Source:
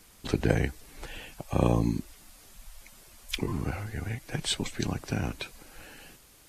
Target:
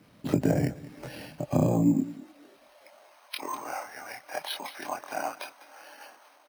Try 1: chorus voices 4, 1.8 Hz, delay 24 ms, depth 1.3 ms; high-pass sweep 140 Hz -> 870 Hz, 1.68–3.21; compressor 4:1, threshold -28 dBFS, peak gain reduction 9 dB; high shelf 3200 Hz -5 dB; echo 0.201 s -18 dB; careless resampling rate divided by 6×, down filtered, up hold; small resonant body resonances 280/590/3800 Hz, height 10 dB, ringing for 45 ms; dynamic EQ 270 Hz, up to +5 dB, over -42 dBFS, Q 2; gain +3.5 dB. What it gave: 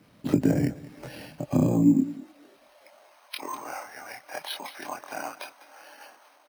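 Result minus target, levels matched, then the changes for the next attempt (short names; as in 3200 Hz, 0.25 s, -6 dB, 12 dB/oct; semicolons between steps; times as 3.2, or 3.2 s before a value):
500 Hz band -3.5 dB
change: dynamic EQ 690 Hz, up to +5 dB, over -42 dBFS, Q 2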